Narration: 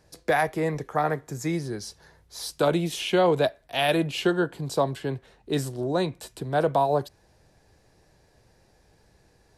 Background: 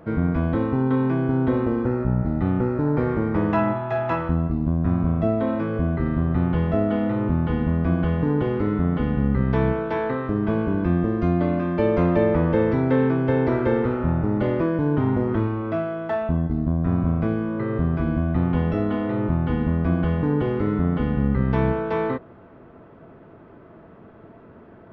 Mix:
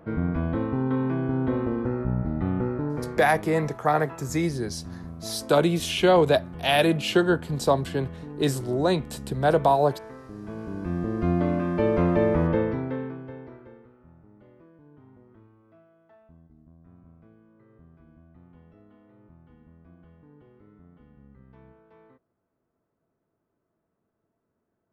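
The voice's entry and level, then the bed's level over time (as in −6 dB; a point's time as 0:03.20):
2.90 s, +2.5 dB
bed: 0:02.72 −4.5 dB
0:03.47 −17.5 dB
0:10.32 −17.5 dB
0:11.31 −2.5 dB
0:12.51 −2.5 dB
0:13.91 −32 dB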